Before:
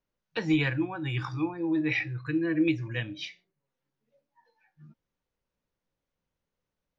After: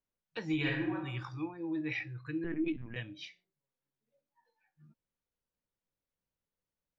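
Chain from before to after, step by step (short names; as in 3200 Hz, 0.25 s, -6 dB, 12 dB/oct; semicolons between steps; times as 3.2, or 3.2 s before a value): 0.55–0.95 reverb throw, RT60 0.8 s, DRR -2.5 dB; 2.44–2.96 LPC vocoder at 8 kHz pitch kept; gain -8.5 dB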